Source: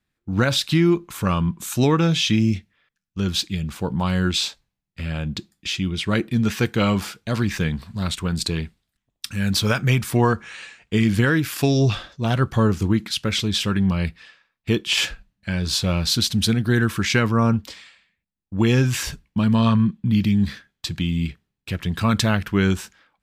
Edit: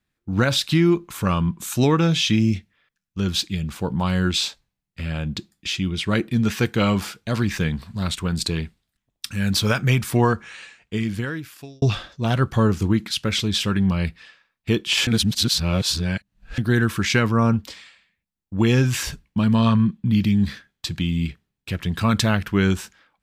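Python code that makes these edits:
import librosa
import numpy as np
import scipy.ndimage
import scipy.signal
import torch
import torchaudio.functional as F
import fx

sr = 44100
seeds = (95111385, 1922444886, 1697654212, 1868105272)

y = fx.edit(x, sr, fx.fade_out_span(start_s=10.23, length_s=1.59),
    fx.reverse_span(start_s=15.07, length_s=1.51), tone=tone)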